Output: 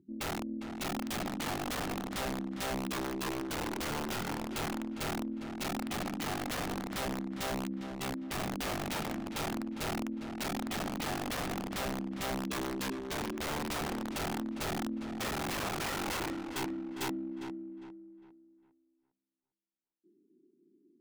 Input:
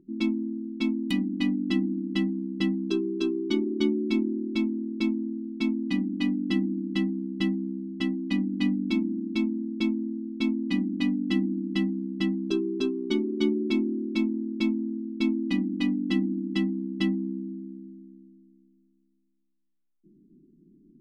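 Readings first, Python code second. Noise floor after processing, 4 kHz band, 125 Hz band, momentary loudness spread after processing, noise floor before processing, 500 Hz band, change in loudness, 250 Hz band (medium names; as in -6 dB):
-77 dBFS, -2.0 dB, no reading, 3 LU, -68 dBFS, -6.0 dB, -8.5 dB, -12.0 dB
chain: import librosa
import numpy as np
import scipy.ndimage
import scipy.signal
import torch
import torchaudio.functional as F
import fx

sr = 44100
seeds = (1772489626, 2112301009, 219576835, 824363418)

y = fx.filter_sweep_highpass(x, sr, from_hz=99.0, to_hz=400.0, start_s=14.7, end_s=16.41, q=2.3)
y = fx.cheby_harmonics(y, sr, harmonics=(2, 3, 4, 8), levels_db=(-38, -34, -30, -35), full_scale_db=-8.5)
y = (np.mod(10.0 ** (22.5 / 20.0) * y + 1.0, 2.0) - 1.0) / 10.0 ** (22.5 / 20.0)
y = fx.echo_filtered(y, sr, ms=404, feedback_pct=34, hz=3000.0, wet_db=-9.0)
y = y * librosa.db_to_amplitude(-8.5)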